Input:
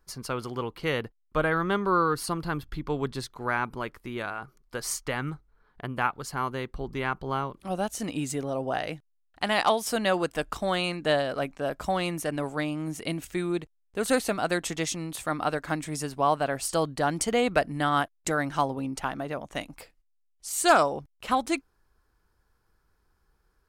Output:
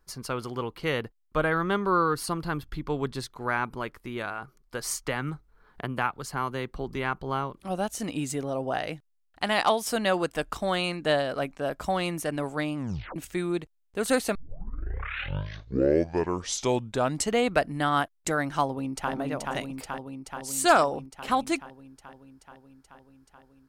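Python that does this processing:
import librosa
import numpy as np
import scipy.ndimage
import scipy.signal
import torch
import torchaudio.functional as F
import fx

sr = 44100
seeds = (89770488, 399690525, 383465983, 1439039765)

y = fx.band_squash(x, sr, depth_pct=40, at=(5.04, 6.96))
y = fx.echo_throw(y, sr, start_s=18.64, length_s=0.48, ms=430, feedback_pct=75, wet_db=-2.5)
y = fx.edit(y, sr, fx.tape_stop(start_s=12.76, length_s=0.4),
    fx.tape_start(start_s=14.35, length_s=3.06), tone=tone)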